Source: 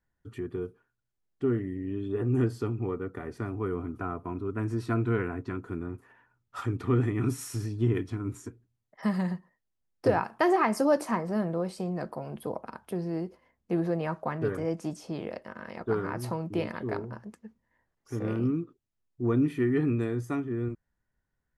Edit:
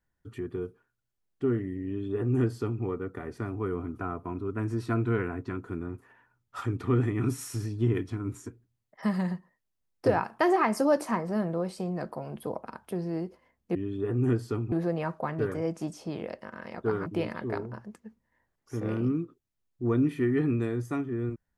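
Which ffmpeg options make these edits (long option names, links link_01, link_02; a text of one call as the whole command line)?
ffmpeg -i in.wav -filter_complex "[0:a]asplit=4[link_01][link_02][link_03][link_04];[link_01]atrim=end=13.752[link_05];[link_02]atrim=start=1.858:end=2.832[link_06];[link_03]atrim=start=13.748:end=16.092[link_07];[link_04]atrim=start=16.448[link_08];[link_05][link_06]acrossfade=duration=0.004:curve1=hsin:curve2=hsin[link_09];[link_09][link_07]acrossfade=duration=0.004:curve1=hsin:curve2=hsin[link_10];[link_10][link_08]acrossfade=duration=0.004:curve1=hsin:curve2=hsin" out.wav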